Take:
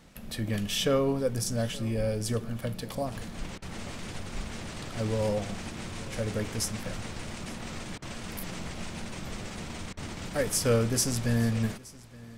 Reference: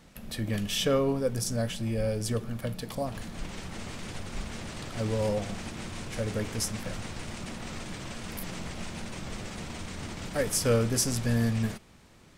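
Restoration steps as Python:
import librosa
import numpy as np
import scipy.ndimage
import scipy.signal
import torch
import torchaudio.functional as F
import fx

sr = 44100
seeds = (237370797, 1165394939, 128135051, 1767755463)

y = fx.fix_interpolate(x, sr, at_s=(3.58, 7.98, 9.93), length_ms=40.0)
y = fx.fix_echo_inverse(y, sr, delay_ms=871, level_db=-21.5)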